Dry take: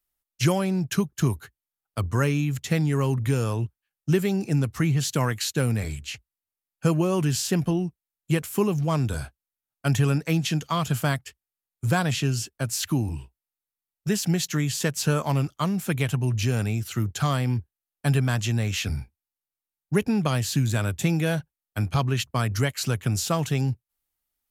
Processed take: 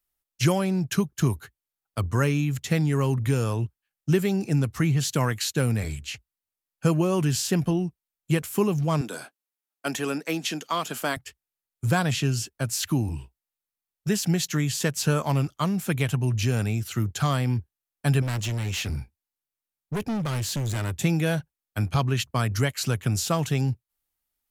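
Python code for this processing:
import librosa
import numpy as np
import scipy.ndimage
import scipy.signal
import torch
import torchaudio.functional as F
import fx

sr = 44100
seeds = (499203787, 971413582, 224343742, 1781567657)

y = fx.highpass(x, sr, hz=240.0, slope=24, at=(9.01, 11.17))
y = fx.clip_hard(y, sr, threshold_db=-25.0, at=(18.22, 20.97))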